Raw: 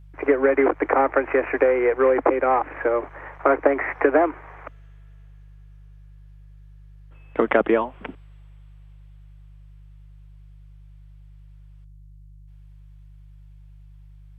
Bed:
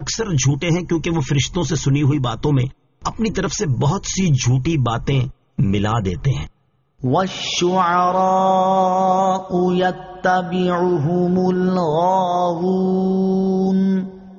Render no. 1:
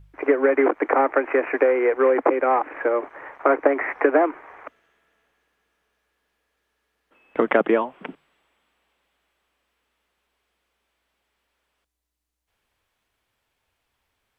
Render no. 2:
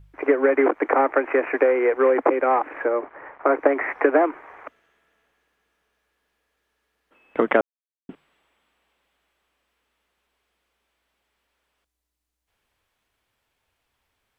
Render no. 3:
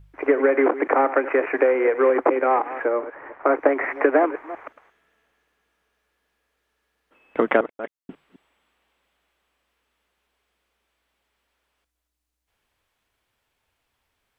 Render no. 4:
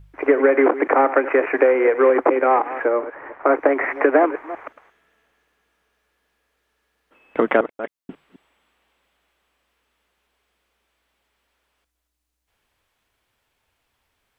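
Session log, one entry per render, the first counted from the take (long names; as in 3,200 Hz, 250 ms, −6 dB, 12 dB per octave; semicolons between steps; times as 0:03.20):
hum removal 50 Hz, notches 3
0:02.85–0:03.55: high-frequency loss of the air 310 metres; 0:07.61–0:08.09: silence
delay that plays each chunk backwards 175 ms, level −13.5 dB
level +3 dB; brickwall limiter −3 dBFS, peak gain reduction 3 dB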